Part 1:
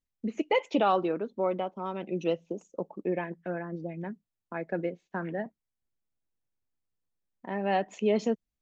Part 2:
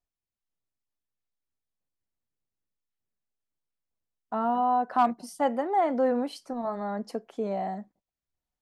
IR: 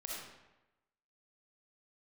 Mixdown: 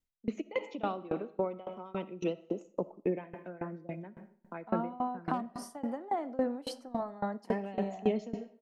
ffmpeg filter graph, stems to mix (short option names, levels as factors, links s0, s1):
-filter_complex "[0:a]bandreject=f=1700:w=15,volume=1.19,asplit=2[s0][s1];[s1]volume=0.422[s2];[1:a]adelay=350,volume=1.26,asplit=2[s3][s4];[s4]volume=0.266[s5];[2:a]atrim=start_sample=2205[s6];[s2][s5]amix=inputs=2:normalize=0[s7];[s7][s6]afir=irnorm=-1:irlink=0[s8];[s0][s3][s8]amix=inputs=3:normalize=0,acrossover=split=310[s9][s10];[s10]acompressor=threshold=0.0447:ratio=10[s11];[s9][s11]amix=inputs=2:normalize=0,aeval=exprs='val(0)*pow(10,-22*if(lt(mod(3.6*n/s,1),2*abs(3.6)/1000),1-mod(3.6*n/s,1)/(2*abs(3.6)/1000),(mod(3.6*n/s,1)-2*abs(3.6)/1000)/(1-2*abs(3.6)/1000))/20)':c=same"